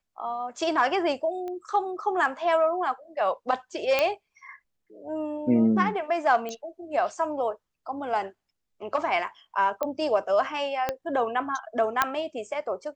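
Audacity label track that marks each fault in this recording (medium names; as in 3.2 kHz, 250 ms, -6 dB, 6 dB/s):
1.480000	1.480000	pop -25 dBFS
3.990000	3.990000	pop -9 dBFS
6.490000	6.490000	pop -21 dBFS
9.830000	9.830000	pop -15 dBFS
10.890000	10.890000	pop -12 dBFS
12.020000	12.020000	pop -6 dBFS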